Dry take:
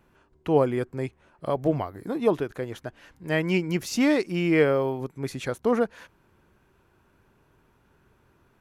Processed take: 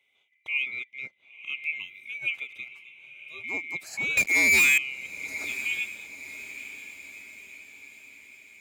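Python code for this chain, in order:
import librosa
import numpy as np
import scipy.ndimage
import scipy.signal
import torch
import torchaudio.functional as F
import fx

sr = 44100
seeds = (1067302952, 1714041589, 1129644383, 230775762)

y = fx.band_swap(x, sr, width_hz=2000)
y = fx.lowpass(y, sr, hz=6100.0, slope=12, at=(0.62, 1.59))
y = fx.comb_fb(y, sr, f0_hz=130.0, decay_s=0.17, harmonics='odd', damping=0.0, mix_pct=90, at=(2.68, 3.44))
y = scipy.signal.sosfilt(scipy.signal.butter(2, 100.0, 'highpass', fs=sr, output='sos'), y)
y = fx.leveller(y, sr, passes=5, at=(4.17, 4.78))
y = fx.echo_diffused(y, sr, ms=999, feedback_pct=53, wet_db=-14.5)
y = F.gain(torch.from_numpy(y), -8.5).numpy()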